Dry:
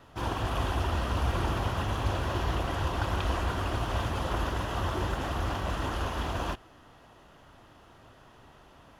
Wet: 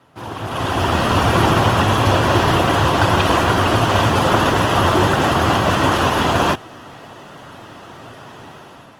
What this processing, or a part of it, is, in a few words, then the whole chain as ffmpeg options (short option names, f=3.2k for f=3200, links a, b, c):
video call: -af "highpass=f=100:w=0.5412,highpass=f=100:w=1.3066,dynaudnorm=f=290:g=5:m=15dB,volume=3dB" -ar 48000 -c:a libopus -b:a 20k